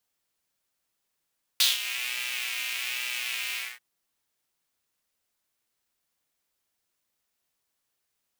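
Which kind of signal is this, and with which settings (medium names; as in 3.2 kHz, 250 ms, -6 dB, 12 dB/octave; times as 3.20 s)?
synth patch with pulse-width modulation B2, detune 24 cents, noise -11 dB, filter highpass, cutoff 1.9 kHz, Q 3.7, filter envelope 1 oct, attack 2.8 ms, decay 0.17 s, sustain -14 dB, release 0.23 s, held 1.96 s, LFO 1.2 Hz, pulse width 39%, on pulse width 5%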